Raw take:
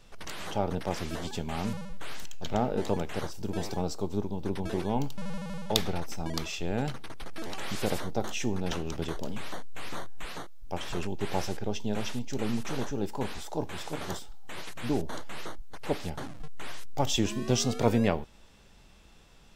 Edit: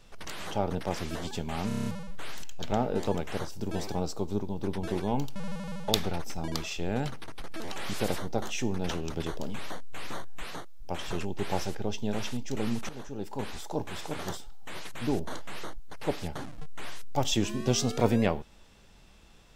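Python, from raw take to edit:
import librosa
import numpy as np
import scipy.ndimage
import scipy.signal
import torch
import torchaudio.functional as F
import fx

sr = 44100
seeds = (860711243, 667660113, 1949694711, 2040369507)

y = fx.edit(x, sr, fx.stutter(start_s=1.68, slice_s=0.03, count=7),
    fx.fade_in_from(start_s=12.71, length_s=0.71, floor_db=-13.0), tone=tone)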